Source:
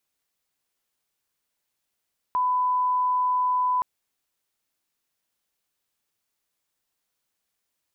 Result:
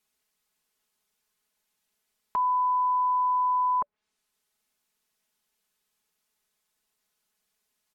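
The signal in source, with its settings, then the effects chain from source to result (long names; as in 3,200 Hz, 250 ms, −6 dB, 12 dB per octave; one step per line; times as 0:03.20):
line-up tone −20 dBFS 1.47 s
notch filter 580 Hz, Q 18
treble cut that deepens with the level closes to 1,200 Hz, closed at −26 dBFS
comb filter 4.7 ms, depth 83%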